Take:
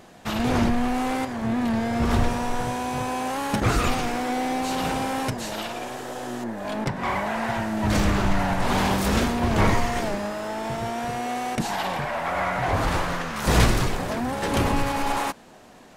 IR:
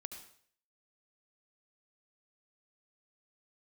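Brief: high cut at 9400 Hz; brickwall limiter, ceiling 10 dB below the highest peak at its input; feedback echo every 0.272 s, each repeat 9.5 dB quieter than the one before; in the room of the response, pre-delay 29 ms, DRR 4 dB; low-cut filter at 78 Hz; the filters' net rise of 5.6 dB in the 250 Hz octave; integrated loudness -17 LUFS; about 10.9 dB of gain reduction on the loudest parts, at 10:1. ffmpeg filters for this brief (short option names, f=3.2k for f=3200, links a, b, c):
-filter_complex "[0:a]highpass=78,lowpass=9.4k,equalizer=f=250:t=o:g=6.5,acompressor=threshold=-24dB:ratio=10,alimiter=limit=-24dB:level=0:latency=1,aecho=1:1:272|544|816|1088:0.335|0.111|0.0365|0.012,asplit=2[a][b];[1:a]atrim=start_sample=2205,adelay=29[c];[b][c]afir=irnorm=-1:irlink=0,volume=-0.5dB[d];[a][d]amix=inputs=2:normalize=0,volume=13dB"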